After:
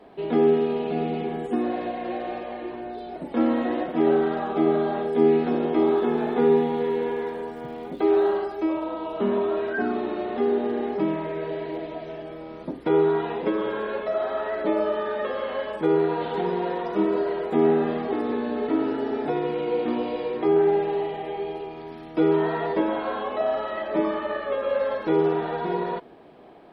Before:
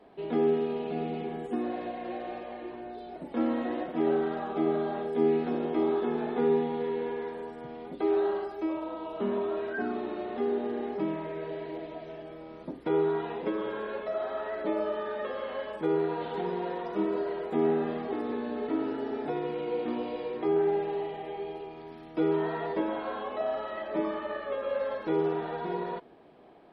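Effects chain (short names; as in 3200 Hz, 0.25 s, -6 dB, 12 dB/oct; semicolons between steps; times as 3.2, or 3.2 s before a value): 5.86–8.35 crackle 170/s -55 dBFS; gain +6.5 dB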